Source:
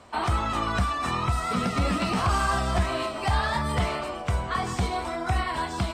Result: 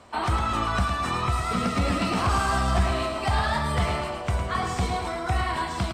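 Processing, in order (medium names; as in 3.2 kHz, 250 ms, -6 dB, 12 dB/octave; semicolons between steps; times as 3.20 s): feedback delay 108 ms, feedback 48%, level -7 dB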